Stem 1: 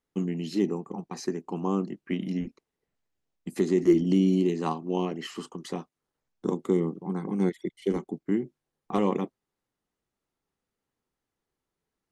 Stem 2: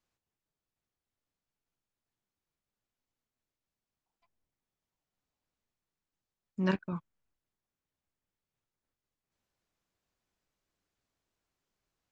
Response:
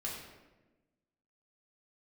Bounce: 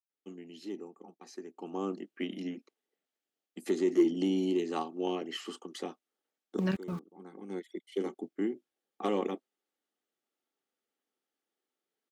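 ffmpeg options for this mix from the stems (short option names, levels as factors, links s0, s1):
-filter_complex "[0:a]acontrast=89,highpass=f=250:w=0.5412,highpass=f=250:w=1.3066,equalizer=f=3200:w=3.8:g=4.5,adelay=100,volume=0.299,afade=t=in:st=1.4:d=0.55:silence=0.334965[s0];[1:a]acrossover=split=330|3000[s1][s2][s3];[s2]acompressor=threshold=0.02:ratio=6[s4];[s1][s4][s3]amix=inputs=3:normalize=0,aeval=exprs='val(0)*gte(abs(val(0)),0.00422)':c=same,volume=0.944,asplit=2[s5][s6];[s6]apad=whole_len=538480[s7];[s0][s7]sidechaincompress=threshold=0.00708:ratio=8:attack=27:release=1170[s8];[s8][s5]amix=inputs=2:normalize=0,asuperstop=centerf=1000:order=4:qfactor=6.8"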